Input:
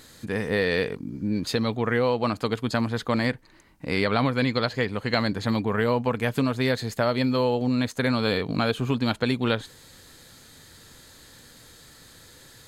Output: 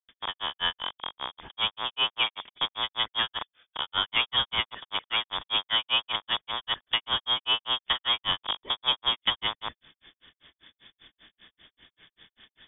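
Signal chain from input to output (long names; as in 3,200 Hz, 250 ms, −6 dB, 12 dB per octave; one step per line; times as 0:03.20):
loose part that buzzes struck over −38 dBFS, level −17 dBFS
granular cloud 145 ms, grains 5.1 per second, pitch spread up and down by 0 semitones
voice inversion scrambler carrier 3,500 Hz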